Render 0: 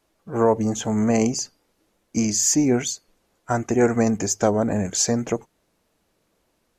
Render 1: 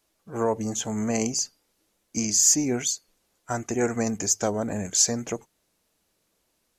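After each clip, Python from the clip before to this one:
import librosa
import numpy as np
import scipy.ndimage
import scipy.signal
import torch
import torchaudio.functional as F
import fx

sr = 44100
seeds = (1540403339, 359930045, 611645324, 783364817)

y = fx.high_shelf(x, sr, hz=2800.0, db=10.0)
y = F.gain(torch.from_numpy(y), -7.0).numpy()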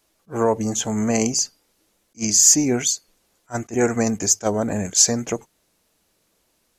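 y = fx.attack_slew(x, sr, db_per_s=430.0)
y = F.gain(torch.from_numpy(y), 5.5).numpy()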